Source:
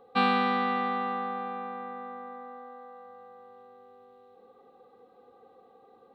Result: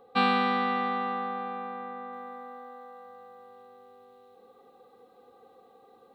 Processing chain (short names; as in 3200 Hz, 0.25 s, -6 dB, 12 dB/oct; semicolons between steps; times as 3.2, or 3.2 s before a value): high shelf 4100 Hz +3.5 dB, from 2.13 s +11 dB